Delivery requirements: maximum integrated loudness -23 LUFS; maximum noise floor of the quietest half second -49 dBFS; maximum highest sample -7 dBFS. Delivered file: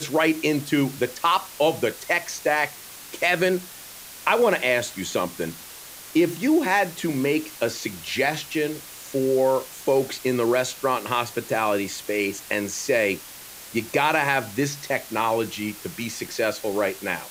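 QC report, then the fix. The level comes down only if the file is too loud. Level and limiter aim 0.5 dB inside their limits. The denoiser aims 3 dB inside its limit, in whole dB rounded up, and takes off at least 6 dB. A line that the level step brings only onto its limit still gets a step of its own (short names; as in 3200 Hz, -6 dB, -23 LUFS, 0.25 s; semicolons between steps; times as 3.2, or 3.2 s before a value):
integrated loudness -24.0 LUFS: OK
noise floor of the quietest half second -41 dBFS: fail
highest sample -6.0 dBFS: fail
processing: denoiser 11 dB, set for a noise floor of -41 dBFS; limiter -7.5 dBFS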